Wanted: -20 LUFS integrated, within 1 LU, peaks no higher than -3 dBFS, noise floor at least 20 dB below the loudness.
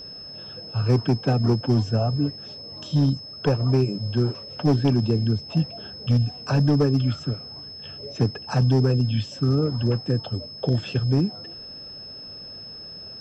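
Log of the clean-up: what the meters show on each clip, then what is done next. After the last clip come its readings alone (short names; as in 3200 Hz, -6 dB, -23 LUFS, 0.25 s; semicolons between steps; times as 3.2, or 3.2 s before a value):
clipped 1.0%; flat tops at -13.5 dBFS; steady tone 5200 Hz; tone level -37 dBFS; loudness -23.5 LUFS; peak -13.5 dBFS; loudness target -20.0 LUFS
-> clip repair -13.5 dBFS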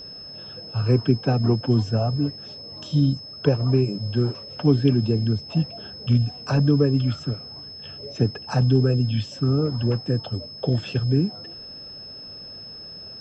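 clipped 0.0%; steady tone 5200 Hz; tone level -37 dBFS
-> notch 5200 Hz, Q 30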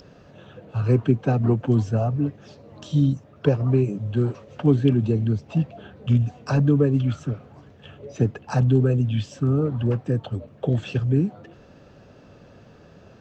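steady tone none; loudness -23.0 LUFS; peak -5.0 dBFS; loudness target -20.0 LUFS
-> gain +3 dB; limiter -3 dBFS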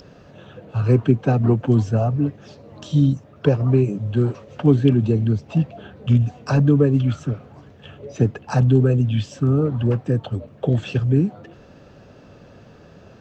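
loudness -20.0 LUFS; peak -3.0 dBFS; noise floor -47 dBFS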